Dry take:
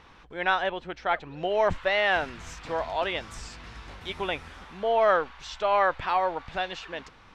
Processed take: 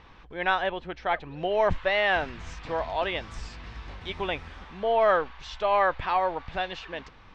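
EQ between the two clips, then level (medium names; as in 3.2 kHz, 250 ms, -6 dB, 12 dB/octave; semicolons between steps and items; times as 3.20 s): low-pass 5.1 kHz 12 dB/octave; bass shelf 99 Hz +6 dB; band-stop 1.4 kHz, Q 18; 0.0 dB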